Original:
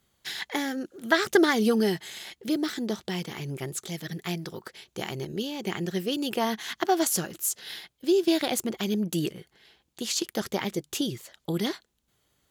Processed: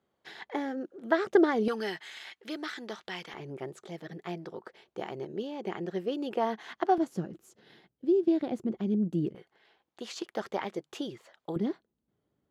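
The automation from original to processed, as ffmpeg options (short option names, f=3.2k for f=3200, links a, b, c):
-af "asetnsamples=n=441:p=0,asendcmd='1.68 bandpass f 1500;3.34 bandpass f 600;6.98 bandpass f 220;9.35 bandpass f 820;11.56 bandpass f 260',bandpass=f=520:t=q:w=0.82:csg=0"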